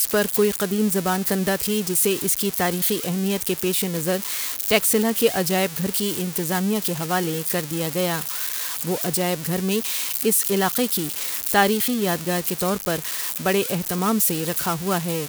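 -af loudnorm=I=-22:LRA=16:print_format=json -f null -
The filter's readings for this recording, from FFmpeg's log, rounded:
"input_i" : "-21.8",
"input_tp" : "-4.8",
"input_lra" : "1.6",
"input_thresh" : "-31.8",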